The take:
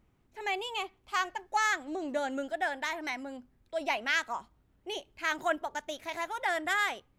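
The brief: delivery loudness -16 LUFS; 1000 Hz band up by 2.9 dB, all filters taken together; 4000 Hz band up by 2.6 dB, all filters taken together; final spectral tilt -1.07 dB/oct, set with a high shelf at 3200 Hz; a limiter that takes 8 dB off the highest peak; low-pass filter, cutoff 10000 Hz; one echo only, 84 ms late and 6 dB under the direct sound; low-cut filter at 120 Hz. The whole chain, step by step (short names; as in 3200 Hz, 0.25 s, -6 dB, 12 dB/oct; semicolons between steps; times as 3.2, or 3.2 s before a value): HPF 120 Hz; LPF 10000 Hz; bell 1000 Hz +4 dB; high shelf 3200 Hz -4 dB; bell 4000 Hz +6 dB; limiter -21 dBFS; echo 84 ms -6 dB; gain +16 dB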